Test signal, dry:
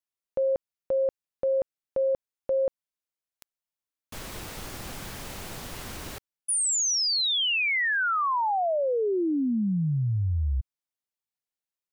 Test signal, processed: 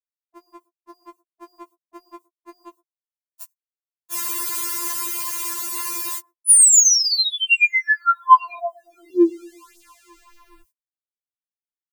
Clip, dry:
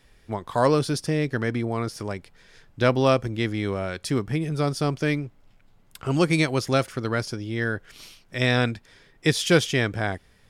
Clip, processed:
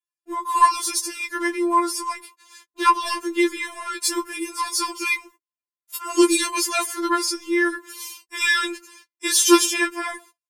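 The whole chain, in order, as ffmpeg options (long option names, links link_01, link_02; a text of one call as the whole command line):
ffmpeg -i in.wav -filter_complex "[0:a]highpass=frequency=110:poles=1,acrossover=split=230|1100[link_01][link_02][link_03];[link_01]aeval=exprs='sgn(val(0))*max(abs(val(0))-0.00126,0)':channel_layout=same[link_04];[link_02]aecho=1:1:117|234|351:0.0794|0.0373|0.0175[link_05];[link_03]flanger=delay=5.6:depth=5.3:regen=-9:speed=1.1:shape=triangular[link_06];[link_04][link_05][link_06]amix=inputs=3:normalize=0,equalizer=frequency=140:width=2:gain=-3,crystalizer=i=7:c=0,superequalizer=8b=0.316:9b=3.55:13b=0.562:14b=0.708,acontrast=31,agate=range=-42dB:threshold=-42dB:ratio=16:release=102:detection=rms,dynaudnorm=framelen=160:gausssize=21:maxgain=15.5dB,afftfilt=real='re*4*eq(mod(b,16),0)':imag='im*4*eq(mod(b,16),0)':win_size=2048:overlap=0.75,volume=-3dB" out.wav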